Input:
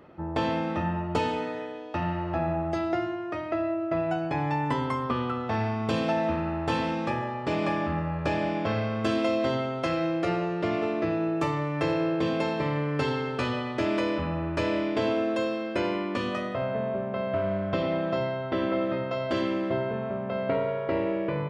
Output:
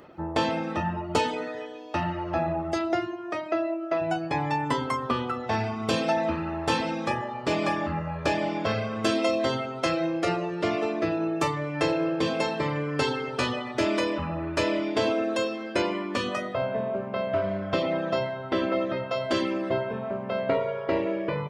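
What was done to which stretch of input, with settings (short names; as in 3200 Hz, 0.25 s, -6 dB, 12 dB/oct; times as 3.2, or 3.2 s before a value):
3.31–4 HPF 150 Hz -> 320 Hz
whole clip: reverb removal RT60 0.7 s; tone controls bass -4 dB, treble +8 dB; gain +3.5 dB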